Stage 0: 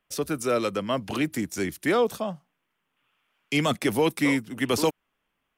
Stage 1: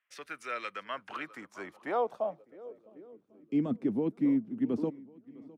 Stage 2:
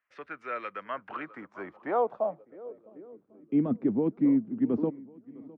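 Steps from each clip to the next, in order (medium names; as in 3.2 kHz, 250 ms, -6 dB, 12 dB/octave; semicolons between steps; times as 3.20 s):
shuffle delay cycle 1097 ms, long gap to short 1.5:1, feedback 43%, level -22 dB; band-pass sweep 1.9 kHz -> 240 Hz, 0.70–3.73 s
low-pass 1.7 kHz 12 dB/octave; trim +3.5 dB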